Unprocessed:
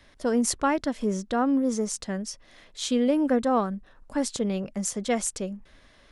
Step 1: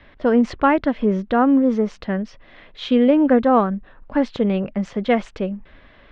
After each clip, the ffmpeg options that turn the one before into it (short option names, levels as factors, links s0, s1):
-af "lowpass=f=3100:w=0.5412,lowpass=f=3100:w=1.3066,volume=2.51"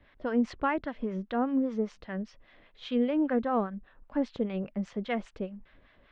-filter_complex "[0:a]acrossover=split=750[s0][s1];[s0]aeval=exprs='val(0)*(1-0.7/2+0.7/2*cos(2*PI*5*n/s))':c=same[s2];[s1]aeval=exprs='val(0)*(1-0.7/2-0.7/2*cos(2*PI*5*n/s))':c=same[s3];[s2][s3]amix=inputs=2:normalize=0,volume=0.355"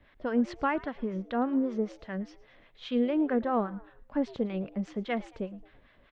-filter_complex "[0:a]asplit=4[s0][s1][s2][s3];[s1]adelay=111,afreqshift=110,volume=0.0891[s4];[s2]adelay=222,afreqshift=220,volume=0.0347[s5];[s3]adelay=333,afreqshift=330,volume=0.0135[s6];[s0][s4][s5][s6]amix=inputs=4:normalize=0"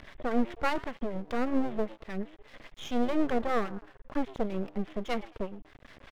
-af "acompressor=mode=upward:threshold=0.0112:ratio=2.5,aresample=8000,aresample=44100,aeval=exprs='max(val(0),0)':c=same,volume=1.68"